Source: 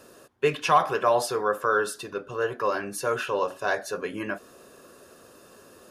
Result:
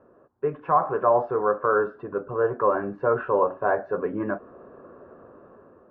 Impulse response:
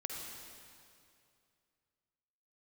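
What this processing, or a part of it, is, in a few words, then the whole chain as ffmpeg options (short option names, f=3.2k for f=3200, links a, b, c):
action camera in a waterproof case: -af "lowpass=f=1.3k:w=0.5412,lowpass=f=1.3k:w=1.3066,dynaudnorm=f=320:g=5:m=9dB,volume=-3.5dB" -ar 32000 -c:a aac -b:a 48k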